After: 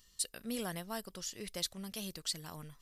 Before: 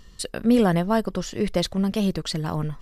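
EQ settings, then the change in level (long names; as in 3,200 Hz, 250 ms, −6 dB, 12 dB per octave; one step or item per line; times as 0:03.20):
first-order pre-emphasis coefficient 0.9
−2.5 dB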